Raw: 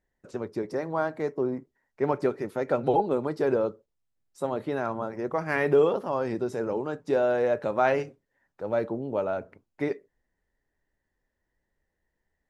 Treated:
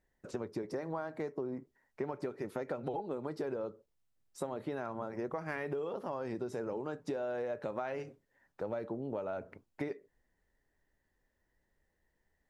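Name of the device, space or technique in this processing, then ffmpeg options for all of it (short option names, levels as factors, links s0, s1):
serial compression, leveller first: -af "acompressor=threshold=0.0501:ratio=2,acompressor=threshold=0.0158:ratio=6,volume=1.12"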